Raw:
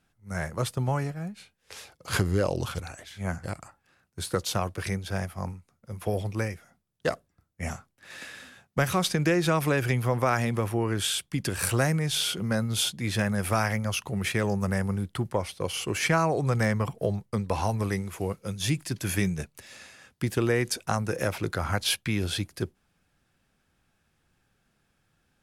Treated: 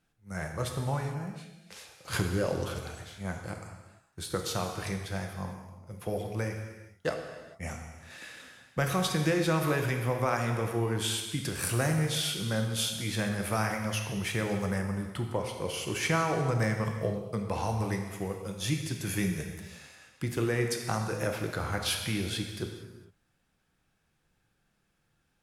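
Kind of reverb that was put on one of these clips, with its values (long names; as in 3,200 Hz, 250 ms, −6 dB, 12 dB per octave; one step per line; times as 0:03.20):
reverb whose tail is shaped and stops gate 480 ms falling, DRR 3 dB
level −5 dB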